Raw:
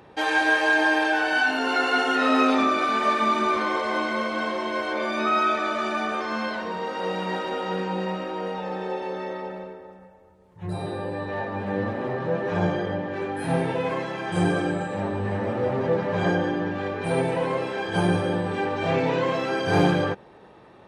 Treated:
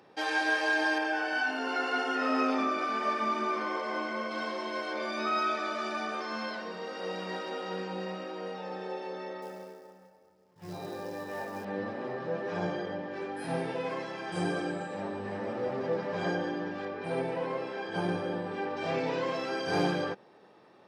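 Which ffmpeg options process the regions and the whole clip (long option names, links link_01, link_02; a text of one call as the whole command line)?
ffmpeg -i in.wav -filter_complex "[0:a]asettb=1/sr,asplit=3[link_01][link_02][link_03];[link_01]atrim=end=0.984[link_04];[link_02]atrim=start=0.98:end=4.31,asetpts=PTS-STARTPTS,afade=type=in:duration=0.004:curve=qsin,afade=type=out:start_time=3.326:duration=0.004:curve=qsin,highshelf=frequency=4000:gain=-7,bandreject=frequency=3900:width=6.3[link_05];[link_03]atrim=start=4.306[link_06];[link_04][link_05]acrossfade=duration=0.004:curve1=hsin:curve2=qsin[link_07];[link_07][link_06]acrossfade=duration=0.004:curve1=qsin:curve2=hsin,asettb=1/sr,asplit=3[link_08][link_09][link_10];[link_08]atrim=end=9.424[link_11];[link_09]atrim=start=9.42:end=11.65,asetpts=PTS-STARTPTS,afade=type=in:duration=0.004:curve=qsin,afade=type=out:start_time=2.226:duration=0.004:curve=qsin,lowpass=4400,acrusher=bits=5:mode=log:mix=0:aa=0.000001[link_12];[link_10]atrim=start=11.646[link_13];[link_11][link_12]acrossfade=duration=0.004:curve1=hsin:curve2=qsin[link_14];[link_14][link_13]acrossfade=duration=0.004:curve1=qsin:curve2=hsin,asettb=1/sr,asplit=3[link_15][link_16][link_17];[link_15]atrim=end=16.854[link_18];[link_16]atrim=start=16.85:end=18.77,asetpts=PTS-STARTPTS,afade=type=in:duration=0.004:curve=qsin,afade=type=out:start_time=1.916:duration=0.004:curve=qsin,lowpass=frequency=3000:poles=1,asoftclip=type=hard:threshold=-12.5dB[link_19];[link_17]atrim=start=18.766[link_20];[link_18][link_19]acrossfade=duration=0.004:curve1=hsin:curve2=qsin[link_21];[link_21][link_20]acrossfade=duration=0.004:curve1=qsin:curve2=hsin,highpass=180,equalizer=frequency=5100:width_type=o:width=0.32:gain=10,bandreject=frequency=930:width=28,volume=-7.5dB" out.wav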